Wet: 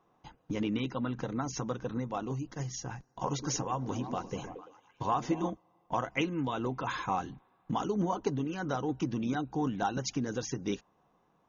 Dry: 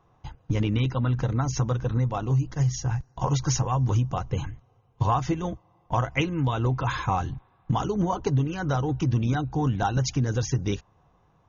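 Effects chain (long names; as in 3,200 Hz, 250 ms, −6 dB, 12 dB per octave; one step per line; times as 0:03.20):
low shelf with overshoot 150 Hz −12 dB, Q 1.5
0:03.27–0:05.50: echo through a band-pass that steps 113 ms, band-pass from 280 Hz, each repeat 0.7 octaves, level −4.5 dB
level −5.5 dB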